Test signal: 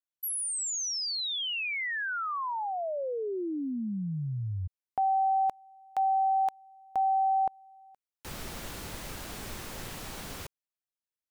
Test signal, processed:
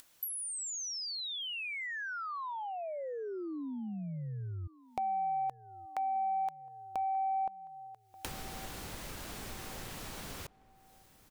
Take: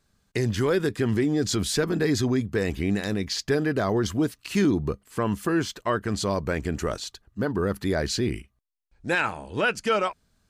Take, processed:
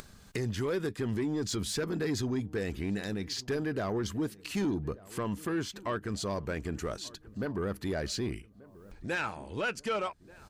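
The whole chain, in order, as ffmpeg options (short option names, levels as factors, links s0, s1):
-filter_complex "[0:a]acompressor=mode=upward:threshold=0.0224:ratio=2.5:attack=46:release=265:knee=2.83:detection=peak,asoftclip=type=tanh:threshold=0.133,asplit=2[s0][s1];[s1]adelay=1184,lowpass=f=1400:p=1,volume=0.0944,asplit=2[s2][s3];[s3]adelay=1184,lowpass=f=1400:p=1,volume=0.49,asplit=2[s4][s5];[s5]adelay=1184,lowpass=f=1400:p=1,volume=0.49,asplit=2[s6][s7];[s7]adelay=1184,lowpass=f=1400:p=1,volume=0.49[s8];[s0][s2][s4][s6][s8]amix=inputs=5:normalize=0,volume=0.473"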